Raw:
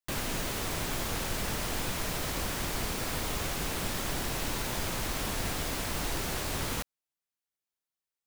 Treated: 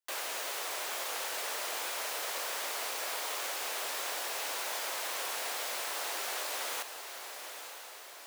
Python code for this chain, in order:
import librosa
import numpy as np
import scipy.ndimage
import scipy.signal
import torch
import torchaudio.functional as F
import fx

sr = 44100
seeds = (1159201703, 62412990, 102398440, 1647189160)

y = scipy.signal.sosfilt(scipy.signal.butter(4, 500.0, 'highpass', fs=sr, output='sos'), x)
y = fx.echo_diffused(y, sr, ms=915, feedback_pct=56, wet_db=-8.5)
y = y * 10.0 ** (-1.5 / 20.0)